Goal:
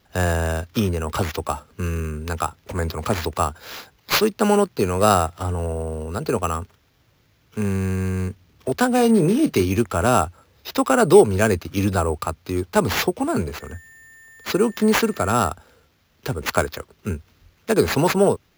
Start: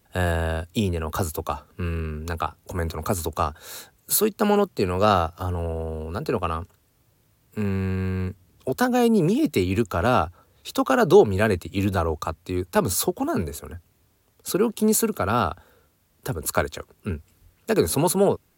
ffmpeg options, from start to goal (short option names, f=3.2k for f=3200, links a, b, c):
-filter_complex "[0:a]asettb=1/sr,asplit=3[a][b][c];[a]atrim=end=8.954[d];[b]atrim=start=8.95:end=9.69,asetpts=PTS-STARTPTS,afade=t=in:d=0.004:c=qsin,afade=t=out:st=0.736:d=0.004:c=qsin,asplit=2[e][f];[f]adelay=31,volume=-12.5dB[g];[e][g]amix=inputs=2:normalize=0,atrim=end_sample=32634[h];[c]atrim=start=9.686[i];[d][h]acrossfade=d=0.004:c1=hsin:c2=qsin[j];[j][i]acrossfade=d=0.004:c1=qsin:c2=hsin,asettb=1/sr,asplit=3[k][l][m];[k]atrim=end=13.604[n];[l]atrim=start=13.6:end=15.49,asetpts=PTS-STARTPTS,afade=t=in:d=0.004:c=qsin,afade=t=out:st=1.886:d=0.004:c=qsin,aeval=exprs='val(0)+0.00447*sin(2*PI*1800*n/s)':c=same[o];[m]atrim=start=15.486[p];[n][o]acrossfade=d=0.004:c1=hsin:c2=qsin[q];[q][p]acrossfade=d=0.004:c1=qsin:c2=hsin,acrusher=samples=5:mix=1:aa=0.000001,volume=2.5dB"